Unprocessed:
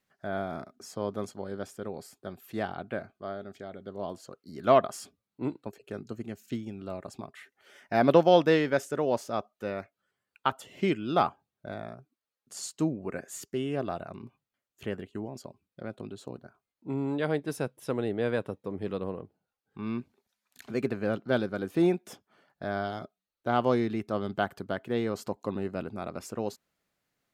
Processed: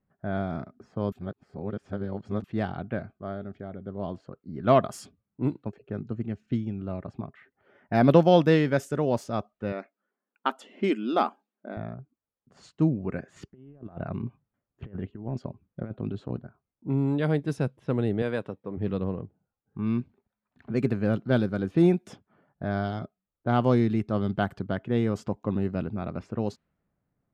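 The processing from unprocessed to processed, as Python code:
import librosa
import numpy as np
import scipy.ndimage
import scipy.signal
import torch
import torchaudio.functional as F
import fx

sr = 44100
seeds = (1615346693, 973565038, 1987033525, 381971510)

y = fx.brickwall_highpass(x, sr, low_hz=200.0, at=(9.72, 11.77))
y = fx.over_compress(y, sr, threshold_db=-40.0, ratio=-0.5, at=(13.36, 16.41))
y = fx.highpass(y, sr, hz=350.0, slope=6, at=(18.22, 18.77))
y = fx.notch(y, sr, hz=4200.0, q=6.8, at=(24.75, 25.6))
y = fx.edit(y, sr, fx.reverse_span(start_s=1.12, length_s=1.32), tone=tone)
y = fx.env_lowpass(y, sr, base_hz=1100.0, full_db=-25.0)
y = fx.bass_treble(y, sr, bass_db=11, treble_db=-1)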